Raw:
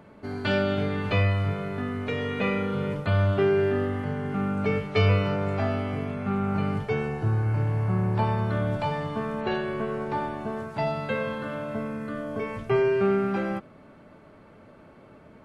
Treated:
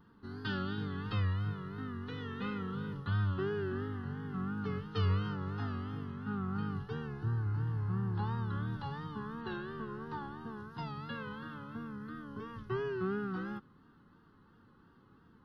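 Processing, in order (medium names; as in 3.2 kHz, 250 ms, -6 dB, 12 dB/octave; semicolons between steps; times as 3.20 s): vibrato 2.9 Hz 98 cents; static phaser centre 2.3 kHz, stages 6; trim -8.5 dB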